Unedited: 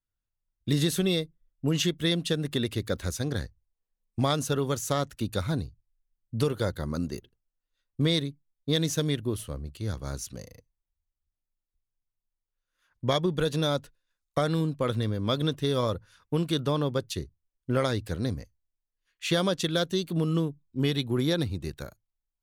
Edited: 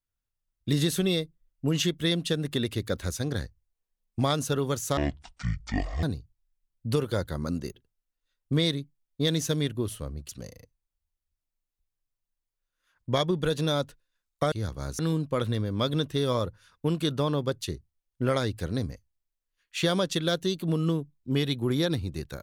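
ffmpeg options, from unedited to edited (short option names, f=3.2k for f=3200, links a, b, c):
-filter_complex "[0:a]asplit=6[a][b][c][d][e][f];[a]atrim=end=4.974[g];[b]atrim=start=4.97:end=5.51,asetpts=PTS-STARTPTS,asetrate=22491,aresample=44100,atrim=end_sample=46694,asetpts=PTS-STARTPTS[h];[c]atrim=start=5.506:end=9.772[i];[d]atrim=start=10.238:end=14.472[j];[e]atrim=start=9.768:end=10.242[k];[f]atrim=start=14.468[l];[g][h]acrossfade=d=0.004:c1=hsin:c2=hsin[m];[m][i]acrossfade=d=0.004:c1=hsin:c2=hsin[n];[n][j]acrossfade=d=0.004:c1=hsin:c2=hsin[o];[o][k]acrossfade=d=0.004:c1=hsin:c2=hsin[p];[p][l]acrossfade=d=0.004:c1=hsin:c2=hsin"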